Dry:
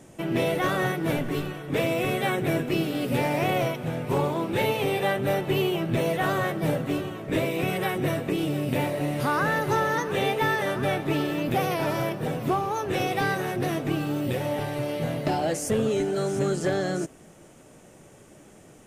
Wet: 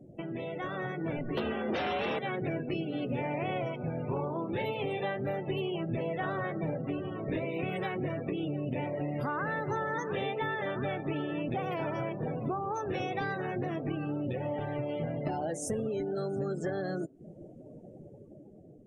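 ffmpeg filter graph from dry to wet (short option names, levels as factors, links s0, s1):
-filter_complex "[0:a]asettb=1/sr,asplit=3[s0][s1][s2];[s0]atrim=end=1.374[s3];[s1]atrim=start=1.37:end=2.19,asetpts=PTS-STARTPTS,afade=t=in:d=0.004:c=qsin,afade=t=out:st=0.816:d=0.004:c=qsin,acrossover=split=160|660|7800[s4][s5][s6][s7];[s4]acompressor=threshold=0.00891:ratio=3[s8];[s5]acompressor=threshold=0.0355:ratio=3[s9];[s6]acompressor=threshold=0.0251:ratio=3[s10];[s7]acompressor=threshold=0.00316:ratio=3[s11];[s8][s9][s10][s11]amix=inputs=4:normalize=0,aeval=exprs='0.15*sin(PI/2*3.16*val(0)/0.15)':c=same,afreqshift=73[s12];[s2]atrim=start=2.186[s13];[s3][s12]acrossfade=d=0.004:c1=hsin:c2=qsin[s14];[s14][s13]acrossfade=d=0.004:c1=qsin:c2=hsin,acompressor=threshold=0.0126:ratio=4,afftdn=nr=34:nf=-46,dynaudnorm=f=130:g=13:m=1.78"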